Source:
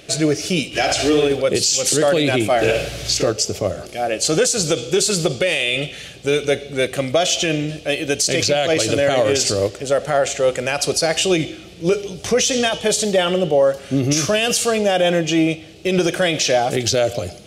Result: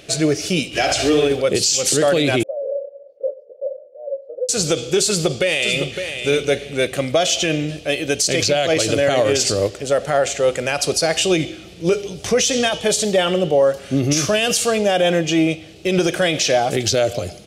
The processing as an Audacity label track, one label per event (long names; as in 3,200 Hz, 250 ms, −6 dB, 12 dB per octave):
2.430000	4.490000	flat-topped band-pass 540 Hz, Q 7.2
5.060000	6.170000	delay throw 560 ms, feedback 20%, level −8 dB